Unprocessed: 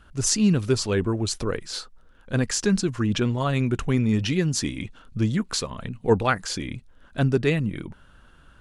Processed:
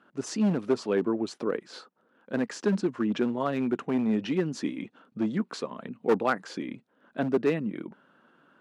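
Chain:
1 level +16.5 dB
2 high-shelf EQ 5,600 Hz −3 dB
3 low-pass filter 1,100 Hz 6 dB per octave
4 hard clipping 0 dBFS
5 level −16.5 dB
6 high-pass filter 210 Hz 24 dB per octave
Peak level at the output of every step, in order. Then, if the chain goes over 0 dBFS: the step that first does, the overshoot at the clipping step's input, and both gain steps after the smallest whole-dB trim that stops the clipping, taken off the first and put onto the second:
+10.0, +10.0, +9.5, 0.0, −16.5, −11.0 dBFS
step 1, 9.5 dB
step 1 +6.5 dB, step 5 −6.5 dB

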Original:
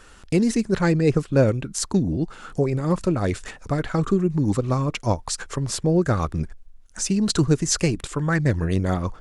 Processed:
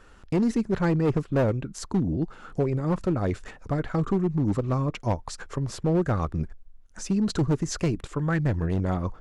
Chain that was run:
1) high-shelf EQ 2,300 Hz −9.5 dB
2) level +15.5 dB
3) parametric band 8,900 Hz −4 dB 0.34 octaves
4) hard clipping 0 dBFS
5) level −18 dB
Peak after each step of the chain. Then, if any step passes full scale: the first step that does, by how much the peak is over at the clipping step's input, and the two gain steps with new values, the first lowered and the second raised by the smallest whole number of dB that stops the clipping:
−7.0, +8.5, +8.5, 0.0, −18.0 dBFS
step 2, 8.5 dB
step 2 +6.5 dB, step 5 −9 dB

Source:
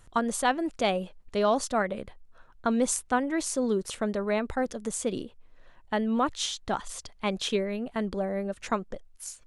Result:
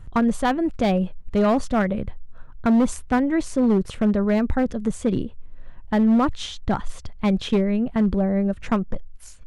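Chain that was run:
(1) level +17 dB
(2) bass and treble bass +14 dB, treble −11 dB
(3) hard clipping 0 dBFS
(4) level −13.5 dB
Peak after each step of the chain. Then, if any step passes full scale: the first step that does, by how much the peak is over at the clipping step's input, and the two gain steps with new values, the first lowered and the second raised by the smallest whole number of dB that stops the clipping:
+5.5, +6.0, 0.0, −13.5 dBFS
step 1, 6.0 dB
step 1 +11 dB, step 4 −7.5 dB

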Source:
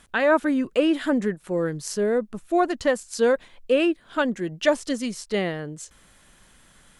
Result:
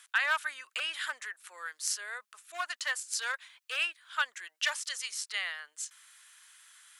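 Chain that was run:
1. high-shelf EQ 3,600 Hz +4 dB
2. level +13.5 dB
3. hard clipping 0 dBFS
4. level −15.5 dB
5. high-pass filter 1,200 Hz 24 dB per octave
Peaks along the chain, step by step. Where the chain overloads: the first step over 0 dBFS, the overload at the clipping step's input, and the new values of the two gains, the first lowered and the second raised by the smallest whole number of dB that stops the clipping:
−7.5, +6.0, 0.0, −15.5, −13.5 dBFS
step 2, 6.0 dB
step 2 +7.5 dB, step 4 −9.5 dB

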